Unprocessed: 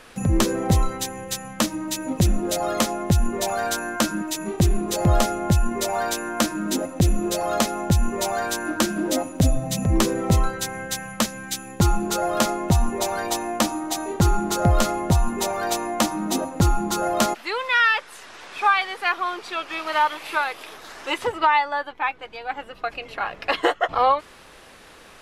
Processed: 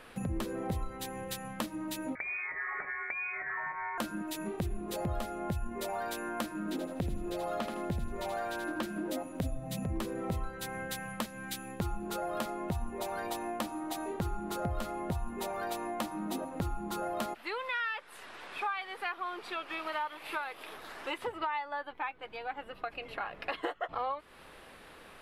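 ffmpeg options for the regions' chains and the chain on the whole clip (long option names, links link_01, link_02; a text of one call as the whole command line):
ffmpeg -i in.wav -filter_complex "[0:a]asettb=1/sr,asplit=3[link_01][link_02][link_03];[link_01]atrim=end=2.154[link_04];[link_02]atrim=start=2.15:end=3.98,asetpts=PTS-STARTPTS,afade=type=in:duration=0.004:curve=qsin,afade=type=out:start_time=1.826:duration=0.004:curve=qsin,tiltshelf=frequency=830:gain=-7,acompressor=threshold=-22dB:ratio=5:attack=3.2:release=140:knee=1:detection=peak,lowpass=frequency=2100:width_type=q:width=0.5098,lowpass=frequency=2100:width_type=q:width=0.6013,lowpass=frequency=2100:width_type=q:width=0.9,lowpass=frequency=2100:width_type=q:width=2.563,afreqshift=-2500[link_05];[link_03]atrim=start=3.976[link_06];[link_04][link_05]acrossfade=duration=0.004:curve1=hsin:curve2=qsin[link_07];[link_07][link_06]acrossfade=duration=0.004:curve1=qsin:curve2=hsin,asettb=1/sr,asplit=3[link_08][link_09][link_10];[link_08]atrim=end=6.604[link_11];[link_09]atrim=start=6.6:end=8.83,asetpts=PTS-STARTPTS,afade=type=in:duration=0.004:curve=qsin,afade=type=out:start_time=2.226:duration=0.004:curve=qsin,acrossover=split=5100[link_12][link_13];[link_13]acompressor=threshold=-34dB:ratio=4:attack=1:release=60[link_14];[link_12][link_14]amix=inputs=2:normalize=0,aecho=1:1:80|160|240:0.447|0.125|0.035,atrim=end_sample=98343[link_15];[link_10]atrim=start=8.826[link_16];[link_11][link_15]acrossfade=duration=0.004:curve1=hsin:curve2=qsin[link_17];[link_17][link_16]acrossfade=duration=0.004:curve1=qsin:curve2=hsin,equalizer=frequency=6300:width=1.4:gain=-10.5,bandreject=frequency=50:width_type=h:width=6,bandreject=frequency=100:width_type=h:width=6,acompressor=threshold=-30dB:ratio=3,volume=-5dB" out.wav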